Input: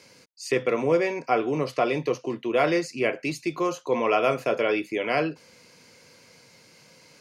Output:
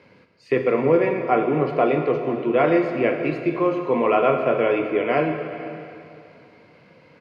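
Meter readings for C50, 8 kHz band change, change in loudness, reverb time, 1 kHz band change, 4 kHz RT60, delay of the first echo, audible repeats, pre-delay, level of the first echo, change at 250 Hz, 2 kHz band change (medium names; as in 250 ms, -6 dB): 5.5 dB, under -20 dB, +4.5 dB, 2.6 s, +4.0 dB, 2.5 s, 498 ms, 1, 7 ms, -19.0 dB, +6.0 dB, +1.0 dB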